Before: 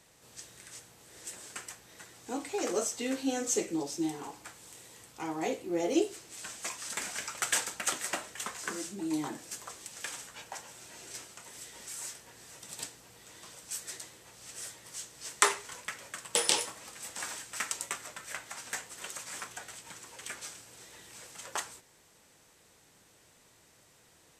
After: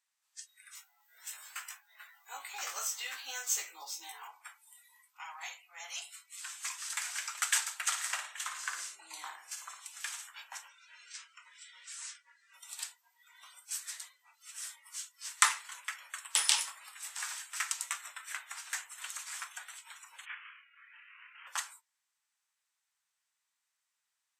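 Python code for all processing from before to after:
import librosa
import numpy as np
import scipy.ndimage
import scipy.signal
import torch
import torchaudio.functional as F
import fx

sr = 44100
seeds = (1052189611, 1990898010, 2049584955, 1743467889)

y = fx.chain(x, sr, fx.hum_notches(base_hz=50, count=9),
    fx.doubler(ms=18.0, db=-3.5),
    fx.resample_linear(factor=2), at=(0.75, 4.28))
y = fx.chain(y, sr, fx.cheby2_highpass(hz=220.0, order=4, stop_db=60),
    fx.transformer_sat(knee_hz=2700.0), at=(5.02, 6.89))
y = fx.chain(y, sr, fx.high_shelf(hz=11000.0, db=-5.0),
    fx.room_flutter(wall_m=9.6, rt60_s=0.46), at=(7.82, 9.88))
y = fx.chain(y, sr, fx.lowpass(hz=7300.0, slope=12),
    fx.peak_eq(hz=780.0, db=-12.0, octaves=0.35), at=(10.68, 12.54))
y = fx.chain(y, sr, fx.cvsd(bps=16000),
    fx.highpass(hz=1300.0, slope=12),
    fx.doubler(ms=27.0, db=-3), at=(20.25, 21.47))
y = scipy.signal.sosfilt(scipy.signal.butter(4, 1000.0, 'highpass', fs=sr, output='sos'), y)
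y = fx.noise_reduce_blind(y, sr, reduce_db=21)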